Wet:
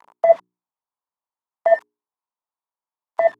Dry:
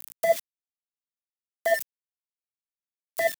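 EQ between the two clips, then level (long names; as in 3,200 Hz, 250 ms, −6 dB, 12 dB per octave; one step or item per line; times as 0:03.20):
low-pass with resonance 970 Hz, resonance Q 4.9
spectral tilt +2.5 dB per octave
mains-hum notches 60/120/180/240/300/360/420 Hz
+5.0 dB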